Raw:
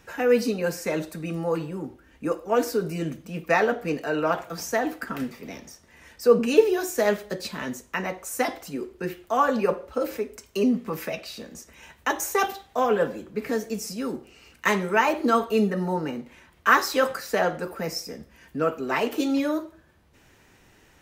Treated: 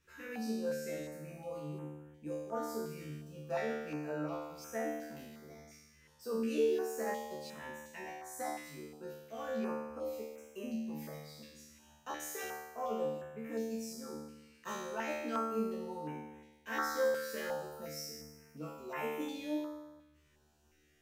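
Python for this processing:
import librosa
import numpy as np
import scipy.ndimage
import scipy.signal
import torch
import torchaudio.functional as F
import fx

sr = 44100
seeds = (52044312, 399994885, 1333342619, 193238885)

y = fx.high_shelf(x, sr, hz=8600.0, db=8.5, at=(16.97, 19.11))
y = fx.comb_fb(y, sr, f0_hz=75.0, decay_s=1.1, harmonics='all', damping=0.0, mix_pct=100)
y = fx.filter_held_notch(y, sr, hz=2.8, low_hz=760.0, high_hz=4500.0)
y = y * librosa.db_to_amplitude(1.5)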